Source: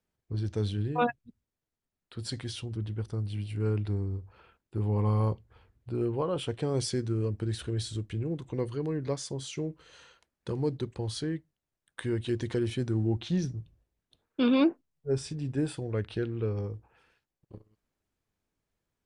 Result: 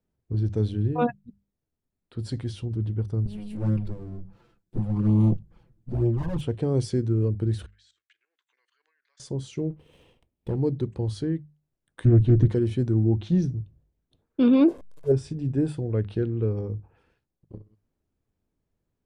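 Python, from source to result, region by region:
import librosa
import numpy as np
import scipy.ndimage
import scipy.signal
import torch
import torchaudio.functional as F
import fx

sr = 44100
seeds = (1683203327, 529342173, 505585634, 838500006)

y = fx.chain(x, sr, fx.lower_of_two(delay_ms=5.9),
    fx.bass_treble(bass_db=5, treble_db=6),
    fx.env_flanger(rest_ms=11.5, full_db=-22.5), at=(3.25, 6.41))
y = fx.chain(y, sr, fx.ellip_bandpass(low_hz=1600.0, high_hz=7300.0, order=3, stop_db=80),
    fx.high_shelf(hz=2100.0, db=-9.5),
    fx.level_steps(step_db=14), at=(7.66, 9.2))
y = fx.chain(y, sr, fx.lower_of_two(delay_ms=0.33),
    fx.peak_eq(hz=6000.0, db=-13.0, octaves=0.41), at=(9.7, 10.56))
y = fx.chain(y, sr, fx.tilt_eq(slope=-3.0),
    fx.comb(ms=6.7, depth=0.55),
    fx.doppler_dist(depth_ms=0.34), at=(12.05, 12.48))
y = fx.chain(y, sr, fx.delta_mod(bps=64000, step_db=-46.0),
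    fx.peak_eq(hz=660.0, db=7.0, octaves=1.9),
    fx.comb(ms=1.9, depth=0.38), at=(14.68, 15.12))
y = fx.tilt_shelf(y, sr, db=7.0, hz=700.0)
y = fx.hum_notches(y, sr, base_hz=50, count=4)
y = y * 10.0 ** (1.0 / 20.0)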